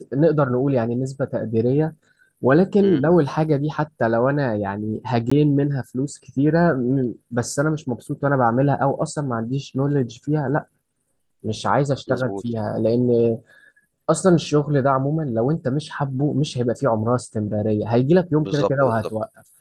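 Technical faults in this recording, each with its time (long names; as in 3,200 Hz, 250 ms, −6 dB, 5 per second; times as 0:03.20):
0:05.30–0:05.32: drop-out 15 ms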